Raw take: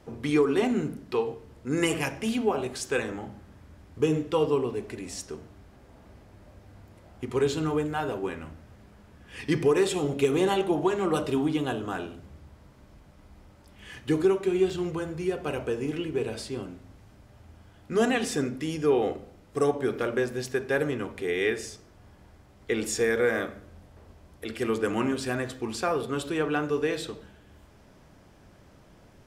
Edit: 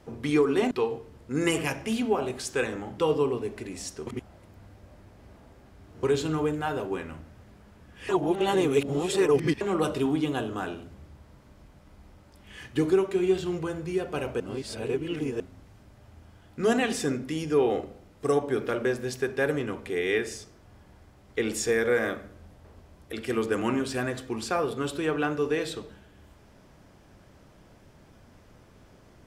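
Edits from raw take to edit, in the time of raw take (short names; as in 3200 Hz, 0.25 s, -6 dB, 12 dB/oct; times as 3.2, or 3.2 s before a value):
0.71–1.07 cut
3.34–4.3 cut
5.39–7.35 reverse
9.41–10.93 reverse
15.72–16.72 reverse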